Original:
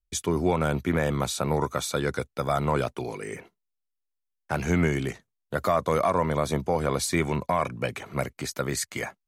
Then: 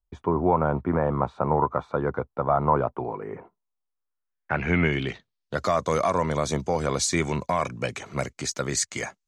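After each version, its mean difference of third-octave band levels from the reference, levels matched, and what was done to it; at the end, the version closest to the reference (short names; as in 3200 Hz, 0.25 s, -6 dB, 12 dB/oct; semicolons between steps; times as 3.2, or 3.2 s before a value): 5.5 dB: low-pass sweep 1000 Hz -> 6800 Hz, 3.83–5.78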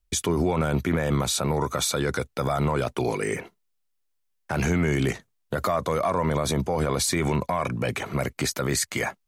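3.0 dB: limiter -23.5 dBFS, peak gain reduction 11 dB; gain +8.5 dB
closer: second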